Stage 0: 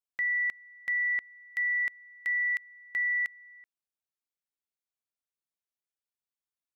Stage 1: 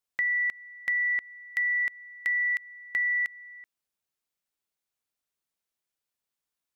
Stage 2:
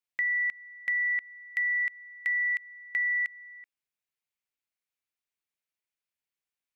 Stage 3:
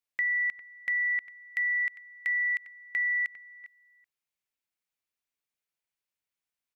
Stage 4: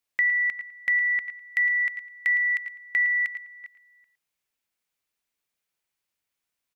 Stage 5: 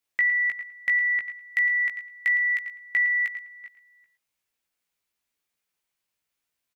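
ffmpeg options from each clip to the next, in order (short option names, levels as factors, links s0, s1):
-af "acompressor=threshold=0.0282:ratio=6,volume=2"
-af "equalizer=f=2300:w=1.5:g=8,volume=0.422"
-filter_complex "[0:a]asplit=2[s0][s1];[s1]adelay=402.3,volume=0.2,highshelf=f=4000:g=-9.05[s2];[s0][s2]amix=inputs=2:normalize=0"
-af "aecho=1:1:111:0.224,volume=2"
-filter_complex "[0:a]asplit=2[s0][s1];[s1]adelay=17,volume=0.562[s2];[s0][s2]amix=inputs=2:normalize=0"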